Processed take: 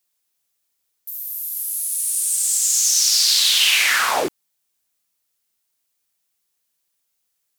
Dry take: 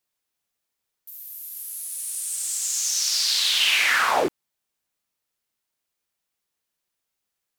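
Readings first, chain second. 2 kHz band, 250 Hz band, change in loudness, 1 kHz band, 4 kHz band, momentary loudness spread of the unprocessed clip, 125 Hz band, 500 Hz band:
+2.0 dB, 0.0 dB, +5.0 dB, +0.5 dB, +5.0 dB, 16 LU, can't be measured, 0.0 dB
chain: high-shelf EQ 3,900 Hz +10 dB

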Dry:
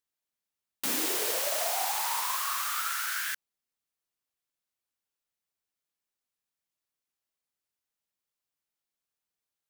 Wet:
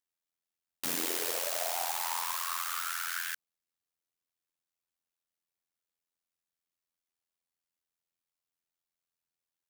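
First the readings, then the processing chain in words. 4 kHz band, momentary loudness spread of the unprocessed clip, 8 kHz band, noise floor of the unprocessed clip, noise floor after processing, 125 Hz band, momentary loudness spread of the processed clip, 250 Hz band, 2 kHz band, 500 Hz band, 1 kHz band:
−3.5 dB, 6 LU, −3.5 dB, below −85 dBFS, below −85 dBFS, can't be measured, 5 LU, −3.5 dB, −3.5 dB, −3.5 dB, −3.5 dB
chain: amplitude modulation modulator 85 Hz, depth 65%

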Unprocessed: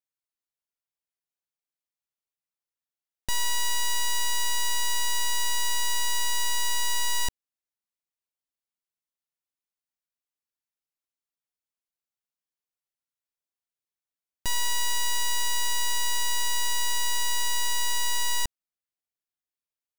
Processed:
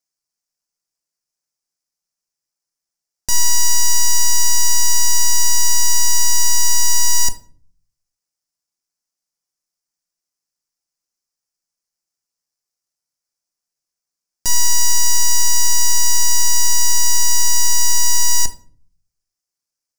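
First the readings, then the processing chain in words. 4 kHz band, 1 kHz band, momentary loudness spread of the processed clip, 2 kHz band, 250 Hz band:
+6.5 dB, +4.5 dB, 2 LU, +3.0 dB, can't be measured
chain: running median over 3 samples
high shelf with overshoot 4,300 Hz +7 dB, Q 3
rectangular room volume 430 cubic metres, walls furnished, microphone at 0.78 metres
level +4 dB

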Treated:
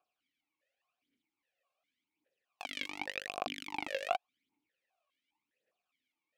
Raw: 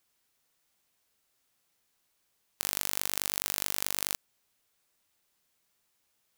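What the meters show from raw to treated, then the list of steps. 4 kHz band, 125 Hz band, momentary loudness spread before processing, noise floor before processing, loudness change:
−7.0 dB, −10.5 dB, 4 LU, −76 dBFS, −8.5 dB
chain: each half-wave held at its own peak
phase shifter 0.88 Hz, delay 1.9 ms, feedback 70%
formant filter that steps through the vowels 4.9 Hz

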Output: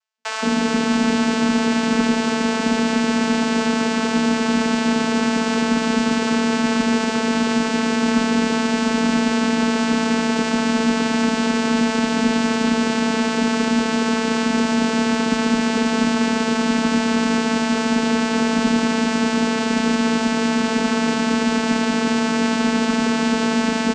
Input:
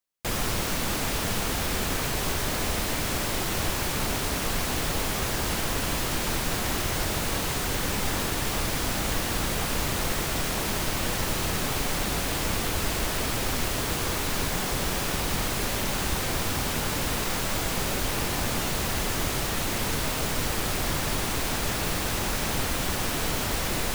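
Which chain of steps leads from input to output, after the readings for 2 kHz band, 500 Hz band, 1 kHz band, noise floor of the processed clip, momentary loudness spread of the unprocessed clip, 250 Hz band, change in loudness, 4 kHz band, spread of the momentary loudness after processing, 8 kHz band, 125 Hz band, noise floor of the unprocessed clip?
+7.5 dB, +10.0 dB, +8.5 dB, −22 dBFS, 0 LU, +17.0 dB, +8.0 dB, +4.0 dB, 1 LU, −1.0 dB, −1.5 dB, −29 dBFS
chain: channel vocoder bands 8, saw 216 Hz
in parallel at −3.5 dB: asymmetric clip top −32 dBFS, bottom −20.5 dBFS
on the sum: frequency shifter +18 Hz
multiband delay without the direct sound highs, lows 170 ms, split 670 Hz
level +8.5 dB

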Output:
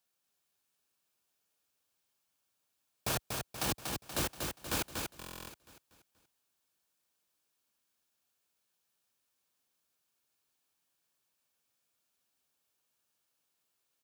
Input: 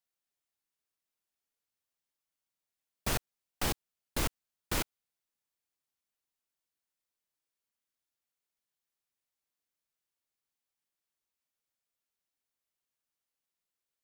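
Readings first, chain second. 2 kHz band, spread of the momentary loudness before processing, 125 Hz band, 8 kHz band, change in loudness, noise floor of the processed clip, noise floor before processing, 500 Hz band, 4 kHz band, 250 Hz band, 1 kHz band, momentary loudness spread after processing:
−0.5 dB, 5 LU, −1.0 dB, +1.5 dB, −0.5 dB, −81 dBFS, below −85 dBFS, +0.5 dB, +1.0 dB, −0.5 dB, +0.5 dB, 12 LU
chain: wavefolder on the positive side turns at −29 dBFS
high-pass filter 68 Hz 12 dB per octave
notch filter 2,000 Hz, Q 8.5
brickwall limiter −30 dBFS, peak gain reduction 9.5 dB
on a send: repeating echo 239 ms, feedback 45%, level −4.5 dB
on the sum: buffer that repeats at 0:05.18, samples 1,024, times 12
level +7.5 dB

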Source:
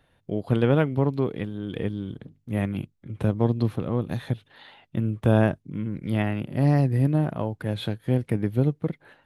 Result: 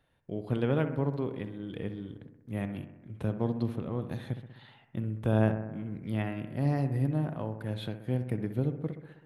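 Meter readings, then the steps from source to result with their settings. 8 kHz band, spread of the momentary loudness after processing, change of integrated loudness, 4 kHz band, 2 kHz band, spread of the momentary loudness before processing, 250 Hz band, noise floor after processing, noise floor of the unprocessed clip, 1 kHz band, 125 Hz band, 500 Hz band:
can't be measured, 12 LU, −7.0 dB, −8.0 dB, −7.5 dB, 12 LU, −7.0 dB, −61 dBFS, −67 dBFS, −7.0 dB, −7.0 dB, −7.0 dB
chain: bucket-brigade delay 64 ms, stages 1,024, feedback 65%, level −10.5 dB
level −8 dB

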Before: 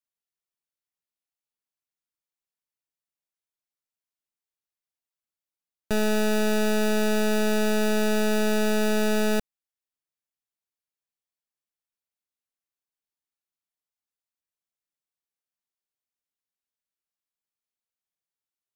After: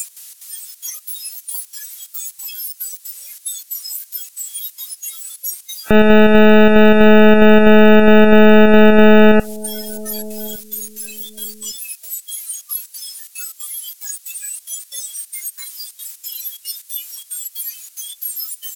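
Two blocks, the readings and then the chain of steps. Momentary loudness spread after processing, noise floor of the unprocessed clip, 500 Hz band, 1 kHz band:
20 LU, below −85 dBFS, +15.5 dB, +15.5 dB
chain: spike at every zero crossing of −30.5 dBFS
gate pattern "x.xx.xxx" 182 BPM −12 dB
low-pass filter 12,000 Hz 12 dB per octave
soft clipping −30 dBFS, distortion −10 dB
downward compressor 16 to 1, threshold −42 dBFS, peak gain reduction 11 dB
repeating echo 1,159 ms, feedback 31%, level −23 dB
noise reduction from a noise print of the clip's start 29 dB
high-shelf EQ 8,400 Hz +4.5 dB
boost into a limiter +36 dB
level −1 dB

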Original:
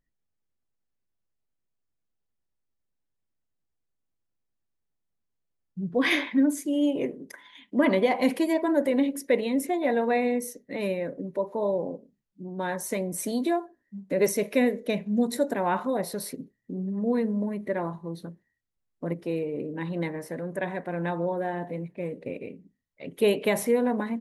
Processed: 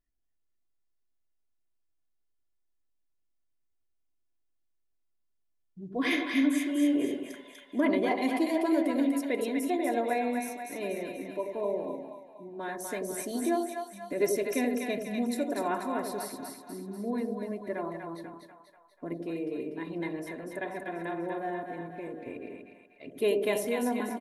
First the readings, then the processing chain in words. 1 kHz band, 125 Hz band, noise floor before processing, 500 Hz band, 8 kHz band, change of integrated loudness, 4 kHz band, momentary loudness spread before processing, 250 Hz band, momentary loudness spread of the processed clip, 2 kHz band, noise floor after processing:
−2.5 dB, −10.5 dB, −80 dBFS, −5.0 dB, −3.5 dB, −4.0 dB, −4.0 dB, 14 LU, −3.0 dB, 15 LU, −3.5 dB, −75 dBFS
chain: comb filter 2.9 ms, depth 54%
echo with a time of its own for lows and highs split 670 Hz, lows 89 ms, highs 244 ms, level −4 dB
level −6.5 dB

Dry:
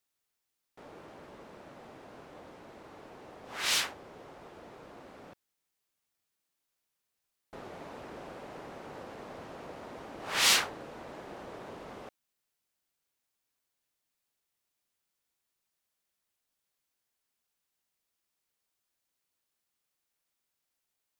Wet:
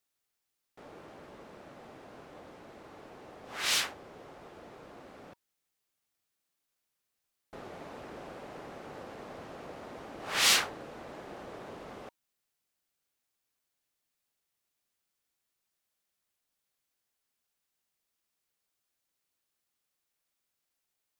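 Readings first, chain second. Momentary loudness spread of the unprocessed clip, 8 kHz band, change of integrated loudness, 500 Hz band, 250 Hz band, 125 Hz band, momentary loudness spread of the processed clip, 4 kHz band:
23 LU, 0.0 dB, 0.0 dB, 0.0 dB, 0.0 dB, 0.0 dB, 23 LU, 0.0 dB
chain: notch filter 950 Hz, Q 27

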